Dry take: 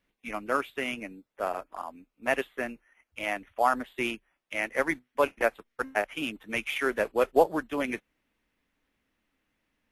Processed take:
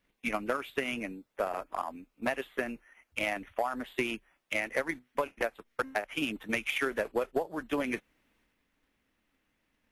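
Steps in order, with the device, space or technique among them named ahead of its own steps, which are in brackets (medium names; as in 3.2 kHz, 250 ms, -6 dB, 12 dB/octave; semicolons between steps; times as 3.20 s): drum-bus smash (transient shaper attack +9 dB, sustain +5 dB; compression 16:1, threshold -25 dBFS, peak gain reduction 18.5 dB; saturation -18 dBFS, distortion -17 dB)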